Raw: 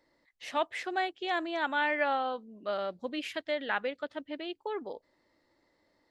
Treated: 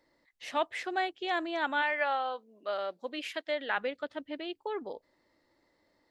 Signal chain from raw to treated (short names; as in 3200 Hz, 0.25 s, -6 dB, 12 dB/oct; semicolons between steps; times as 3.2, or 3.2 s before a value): 1.81–3.76 HPF 570 Hz -> 280 Hz 12 dB/oct